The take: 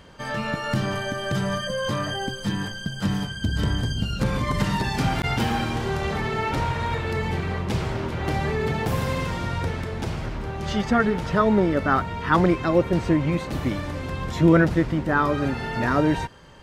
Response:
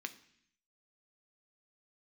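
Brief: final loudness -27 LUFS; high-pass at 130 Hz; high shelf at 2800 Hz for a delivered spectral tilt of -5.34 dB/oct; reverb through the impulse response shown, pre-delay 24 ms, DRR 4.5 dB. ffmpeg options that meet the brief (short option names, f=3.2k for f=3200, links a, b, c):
-filter_complex "[0:a]highpass=130,highshelf=f=2.8k:g=-5.5,asplit=2[a][b];[1:a]atrim=start_sample=2205,adelay=24[c];[b][c]afir=irnorm=-1:irlink=0,volume=-3.5dB[d];[a][d]amix=inputs=2:normalize=0,volume=-2.5dB"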